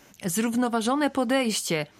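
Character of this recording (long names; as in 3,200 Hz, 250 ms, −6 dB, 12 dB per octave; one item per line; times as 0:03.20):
background noise floor −55 dBFS
spectral slope −3.5 dB per octave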